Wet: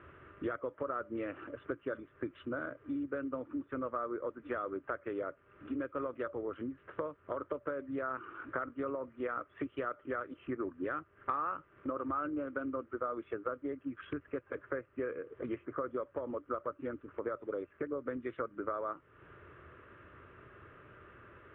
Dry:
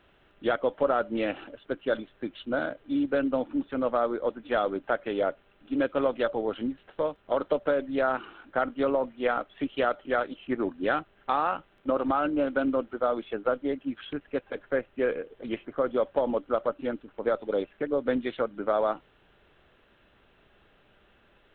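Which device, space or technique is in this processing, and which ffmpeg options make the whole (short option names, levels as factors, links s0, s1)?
bass amplifier: -af "equalizer=f=770:w=1.5:g=-2.5,acompressor=threshold=0.00631:ratio=5,highpass=73,equalizer=f=84:t=q:w=4:g=9,equalizer=f=120:t=q:w=4:g=5,equalizer=f=210:t=q:w=4:g=-8,equalizer=f=360:t=q:w=4:g=3,equalizer=f=780:t=q:w=4:g=-10,equalizer=f=1200:t=q:w=4:g=8,lowpass=f=2100:w=0.5412,lowpass=f=2100:w=1.3066,volume=2.24"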